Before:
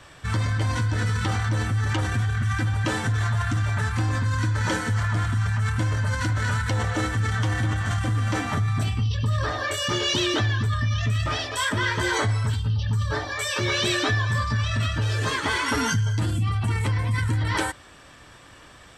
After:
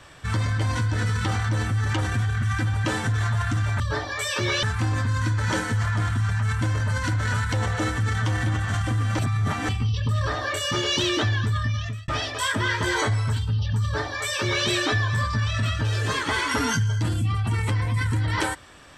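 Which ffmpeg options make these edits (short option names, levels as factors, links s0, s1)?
-filter_complex "[0:a]asplit=6[s0][s1][s2][s3][s4][s5];[s0]atrim=end=3.802[s6];[s1]atrim=start=12.998:end=13.832[s7];[s2]atrim=start=3.798:end=8.362[s8];[s3]atrim=start=8.358:end=8.862,asetpts=PTS-STARTPTS,areverse[s9];[s4]atrim=start=8.858:end=11.25,asetpts=PTS-STARTPTS,afade=t=out:st=1.812:d=0.58:c=qsin[s10];[s5]atrim=start=11.25,asetpts=PTS-STARTPTS,afade=t=in:d=0.004:c=hsin[s11];[s6][s7]acrossfade=d=0.004:c1=hsin:c2=hsin[s12];[s12][s8]acrossfade=d=0.004:c1=hsin:c2=hsin[s13];[s13][s9]acrossfade=d=0.004:c1=hsin:c2=hsin[s14];[s10][s11]concat=n=2:v=0:a=1[s15];[s14][s15]acrossfade=d=0.004:c1=hsin:c2=hsin"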